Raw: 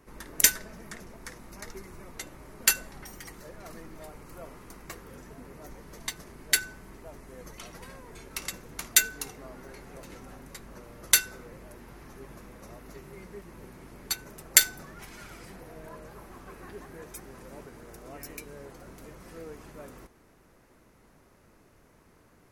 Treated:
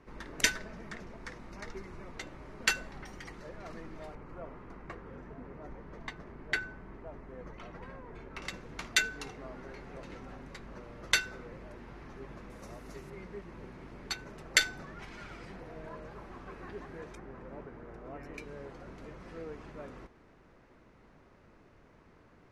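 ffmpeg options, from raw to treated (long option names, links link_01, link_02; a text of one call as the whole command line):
ffmpeg -i in.wav -af "asetnsamples=nb_out_samples=441:pad=0,asendcmd='4.15 lowpass f 1900;8.42 lowpass f 3800;12.5 lowpass f 8700;13.1 lowpass f 3900;17.15 lowpass f 1900;18.34 lowpass f 3700',lowpass=4000" out.wav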